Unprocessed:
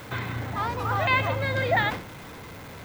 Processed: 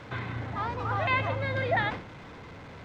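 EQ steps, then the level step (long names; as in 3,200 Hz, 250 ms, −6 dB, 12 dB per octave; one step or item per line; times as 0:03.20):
high-frequency loss of the air 130 metres
−3.0 dB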